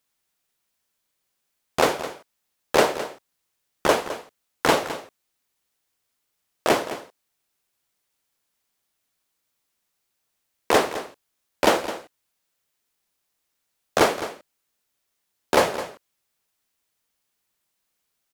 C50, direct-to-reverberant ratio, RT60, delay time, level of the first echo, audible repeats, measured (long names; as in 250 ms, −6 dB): no reverb audible, no reverb audible, no reverb audible, 211 ms, −13.0 dB, 1